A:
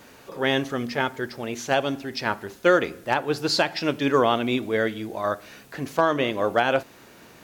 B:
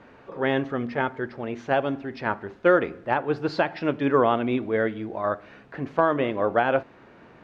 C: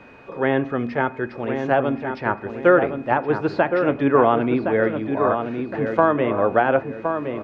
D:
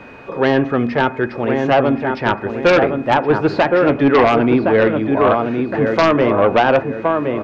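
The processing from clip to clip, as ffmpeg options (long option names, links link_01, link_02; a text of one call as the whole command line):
ffmpeg -i in.wav -af "lowpass=1900" out.wav
ffmpeg -i in.wav -filter_complex "[0:a]asplit=2[link_01][link_02];[link_02]adelay=1066,lowpass=frequency=1600:poles=1,volume=-6dB,asplit=2[link_03][link_04];[link_04]adelay=1066,lowpass=frequency=1600:poles=1,volume=0.39,asplit=2[link_05][link_06];[link_06]adelay=1066,lowpass=frequency=1600:poles=1,volume=0.39,asplit=2[link_07][link_08];[link_08]adelay=1066,lowpass=frequency=1600:poles=1,volume=0.39,asplit=2[link_09][link_10];[link_10]adelay=1066,lowpass=frequency=1600:poles=1,volume=0.39[link_11];[link_01][link_03][link_05][link_07][link_09][link_11]amix=inputs=6:normalize=0,acrossover=split=400|2500[link_12][link_13][link_14];[link_14]acompressor=threshold=-51dB:ratio=6[link_15];[link_12][link_13][link_15]amix=inputs=3:normalize=0,aeval=exprs='val(0)+0.00178*sin(2*PI*2500*n/s)':channel_layout=same,volume=4dB" out.wav
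ffmpeg -i in.wav -af "aeval=exprs='0.668*(cos(1*acos(clip(val(0)/0.668,-1,1)))-cos(1*PI/2))+0.299*(cos(5*acos(clip(val(0)/0.668,-1,1)))-cos(5*PI/2))+0.0473*(cos(7*acos(clip(val(0)/0.668,-1,1)))-cos(7*PI/2))':channel_layout=same,volume=-1dB" out.wav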